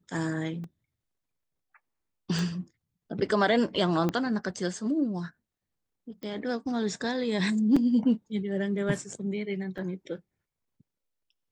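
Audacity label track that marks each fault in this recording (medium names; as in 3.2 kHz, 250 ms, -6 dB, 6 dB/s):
0.640000	0.640000	dropout 2.6 ms
2.390000	2.390000	pop
4.090000	4.090000	pop -15 dBFS
6.230000	6.230000	pop -27 dBFS
7.760000	7.760000	dropout 4.8 ms
9.780000	9.780000	dropout 4.4 ms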